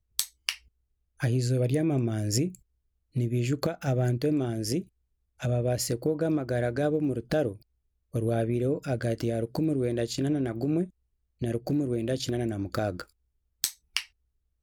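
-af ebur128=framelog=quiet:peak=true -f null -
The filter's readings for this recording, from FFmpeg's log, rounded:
Integrated loudness:
  I:         -29.1 LUFS
  Threshold: -39.4 LUFS
Loudness range:
  LRA:         2.5 LU
  Threshold: -49.6 LUFS
  LRA low:   -31.3 LUFS
  LRA high:  -28.8 LUFS
True peak:
  Peak:       -8.2 dBFS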